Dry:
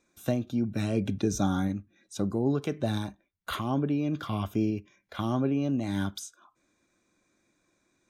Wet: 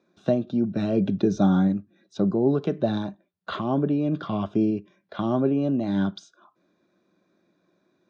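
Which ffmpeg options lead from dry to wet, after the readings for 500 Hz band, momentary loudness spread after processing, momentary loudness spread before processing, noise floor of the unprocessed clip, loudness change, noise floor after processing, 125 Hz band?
+7.0 dB, 10 LU, 11 LU, -74 dBFS, +5.5 dB, -71 dBFS, +3.0 dB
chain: -af "highpass=130,equalizer=f=180:t=q:w=4:g=10,equalizer=f=380:t=q:w=4:g=6,equalizer=f=620:t=q:w=4:g=6,equalizer=f=2.2k:t=q:w=4:g=-9,equalizer=f=3.1k:t=q:w=4:g=-3,lowpass=f=4.4k:w=0.5412,lowpass=f=4.4k:w=1.3066,volume=2.5dB"

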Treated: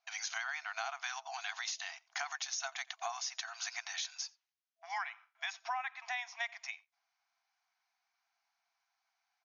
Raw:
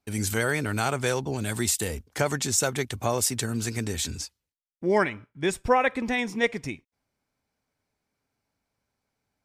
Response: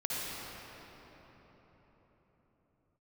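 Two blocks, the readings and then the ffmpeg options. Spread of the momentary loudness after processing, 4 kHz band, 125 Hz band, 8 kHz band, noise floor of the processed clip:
5 LU, -7.0 dB, under -40 dB, -13.5 dB, under -85 dBFS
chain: -filter_complex "[0:a]bandreject=f=880:w=19,afftfilt=real='re*between(b*sr/4096,660,6800)':imag='im*between(b*sr/4096,660,6800)':win_size=4096:overlap=0.75,acompressor=threshold=-38dB:ratio=5,asplit=2[a][b];[b]adelay=87.46,volume=-25dB,highshelf=f=4k:g=-1.97[c];[a][c]amix=inputs=2:normalize=0,volume=1dB"

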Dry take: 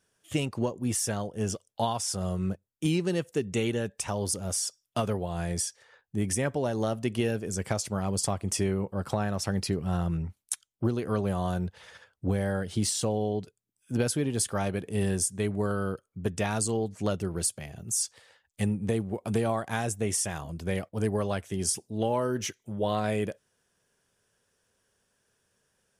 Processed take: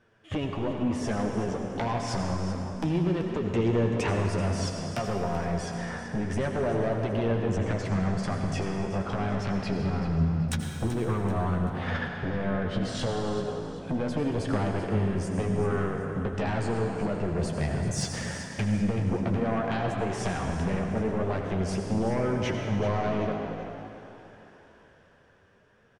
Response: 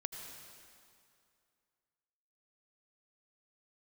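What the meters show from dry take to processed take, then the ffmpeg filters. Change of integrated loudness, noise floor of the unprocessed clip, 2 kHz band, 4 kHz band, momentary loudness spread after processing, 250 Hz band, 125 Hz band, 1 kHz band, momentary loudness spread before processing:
+1.0 dB, -77 dBFS, +3.0 dB, -2.5 dB, 5 LU, +2.5 dB, +3.0 dB, +2.5 dB, 5 LU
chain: -filter_complex "[0:a]lowpass=2.1k,dynaudnorm=f=150:g=21:m=10dB,alimiter=limit=-15.5dB:level=0:latency=1:release=472,acompressor=threshold=-36dB:ratio=5,aeval=exprs='0.126*sin(PI/2*5.01*val(0)/0.126)':c=same,flanger=delay=8.3:depth=8.6:regen=29:speed=0.27:shape=triangular,asplit=5[a][b][c][d][e];[b]adelay=384,afreqshift=58,volume=-12dB[f];[c]adelay=768,afreqshift=116,volume=-20.6dB[g];[d]adelay=1152,afreqshift=174,volume=-29.3dB[h];[e]adelay=1536,afreqshift=232,volume=-37.9dB[i];[a][f][g][h][i]amix=inputs=5:normalize=0[j];[1:a]atrim=start_sample=2205[k];[j][k]afir=irnorm=-1:irlink=0"

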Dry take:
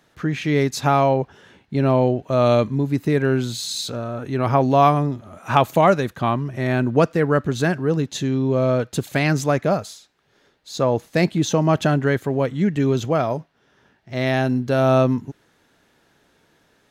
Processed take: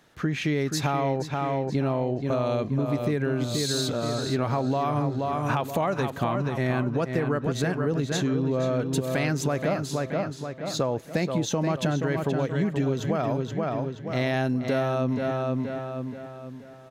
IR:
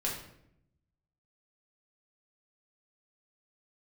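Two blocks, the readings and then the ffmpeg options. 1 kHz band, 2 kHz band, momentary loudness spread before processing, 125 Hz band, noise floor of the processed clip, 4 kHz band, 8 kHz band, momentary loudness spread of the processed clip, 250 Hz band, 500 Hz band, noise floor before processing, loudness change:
-8.0 dB, -5.5 dB, 9 LU, -5.0 dB, -41 dBFS, -3.0 dB, -2.5 dB, 4 LU, -5.0 dB, -6.5 dB, -62 dBFS, -6.5 dB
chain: -filter_complex "[0:a]alimiter=limit=-10.5dB:level=0:latency=1:release=107,asplit=2[a][b];[b]adelay=477,lowpass=f=4.8k:p=1,volume=-6.5dB,asplit=2[c][d];[d]adelay=477,lowpass=f=4.8k:p=1,volume=0.44,asplit=2[e][f];[f]adelay=477,lowpass=f=4.8k:p=1,volume=0.44,asplit=2[g][h];[h]adelay=477,lowpass=f=4.8k:p=1,volume=0.44,asplit=2[i][j];[j]adelay=477,lowpass=f=4.8k:p=1,volume=0.44[k];[c][e][g][i][k]amix=inputs=5:normalize=0[l];[a][l]amix=inputs=2:normalize=0,acompressor=threshold=-22dB:ratio=6"

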